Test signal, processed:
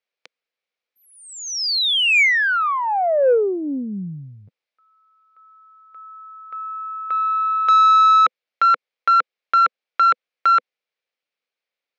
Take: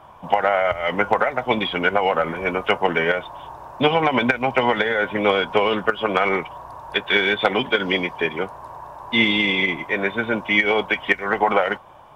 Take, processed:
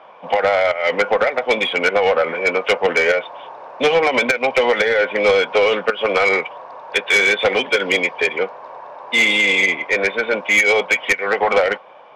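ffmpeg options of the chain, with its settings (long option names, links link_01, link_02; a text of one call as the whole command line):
ffmpeg -i in.wav -af "aeval=exprs='0.668*(cos(1*acos(clip(val(0)/0.668,-1,1)))-cos(1*PI/2))+0.0106*(cos(6*acos(clip(val(0)/0.668,-1,1)))-cos(6*PI/2))':channel_layout=same,highpass=frequency=220:width=0.5412,highpass=frequency=220:width=1.3066,equalizer=frequency=230:width_type=q:width=4:gain=-6,equalizer=frequency=330:width_type=q:width=4:gain=-7,equalizer=frequency=500:width_type=q:width=4:gain=8,equalizer=frequency=980:width_type=q:width=4:gain=-4,equalizer=frequency=2300:width_type=q:width=4:gain=7,lowpass=frequency=4800:width=0.5412,lowpass=frequency=4800:width=1.3066,asoftclip=type=tanh:threshold=-12dB,volume=3.5dB" out.wav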